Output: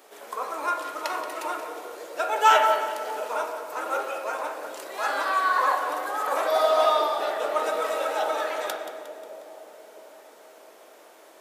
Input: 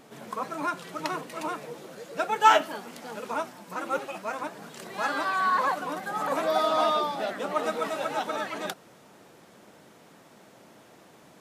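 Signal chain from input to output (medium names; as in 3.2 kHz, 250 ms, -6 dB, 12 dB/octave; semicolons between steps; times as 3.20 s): high-pass 380 Hz 24 dB/octave; treble shelf 10 kHz +9.5 dB; two-band feedback delay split 750 Hz, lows 654 ms, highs 179 ms, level -12 dB; on a send at -1.5 dB: reverberation RT60 1.9 s, pre-delay 12 ms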